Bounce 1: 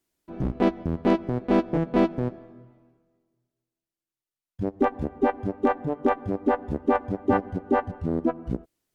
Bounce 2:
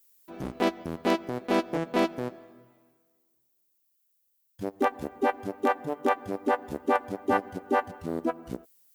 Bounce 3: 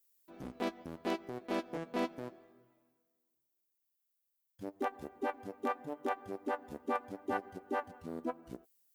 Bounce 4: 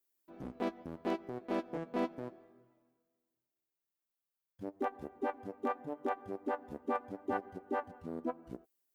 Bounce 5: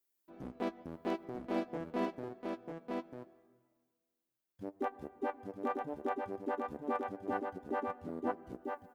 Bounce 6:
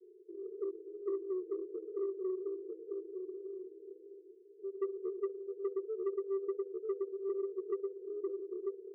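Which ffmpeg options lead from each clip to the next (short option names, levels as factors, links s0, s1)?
-af "aemphasis=mode=production:type=riaa"
-af "flanger=delay=2.5:depth=1.8:regen=73:speed=0.8:shape=sinusoidal,volume=0.501"
-af "highshelf=f=2300:g=-10,volume=1.12"
-af "aecho=1:1:945:0.631,volume=0.891"
-af "aeval=exprs='val(0)+0.5*0.0126*sgn(val(0))':c=same,asuperpass=centerf=400:order=12:qfactor=3.7,asoftclip=type=tanh:threshold=0.0168,volume=2.37"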